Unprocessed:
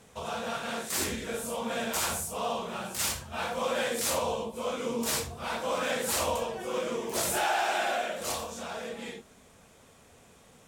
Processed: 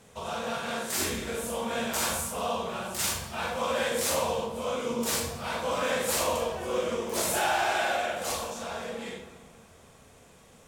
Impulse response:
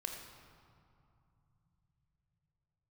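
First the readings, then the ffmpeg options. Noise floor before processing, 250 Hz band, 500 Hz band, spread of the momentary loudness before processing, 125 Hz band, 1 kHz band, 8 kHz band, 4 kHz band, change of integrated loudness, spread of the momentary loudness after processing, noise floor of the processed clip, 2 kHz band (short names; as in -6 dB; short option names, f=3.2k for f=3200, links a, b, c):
-57 dBFS, +1.5 dB, +2.0 dB, 8 LU, +2.5 dB, +1.5 dB, +1.0 dB, +1.5 dB, +1.5 dB, 9 LU, -55 dBFS, +2.0 dB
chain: -filter_complex "[0:a]asplit=2[a][b];[1:a]atrim=start_sample=2205,adelay=43[c];[b][c]afir=irnorm=-1:irlink=0,volume=-3dB[d];[a][d]amix=inputs=2:normalize=0"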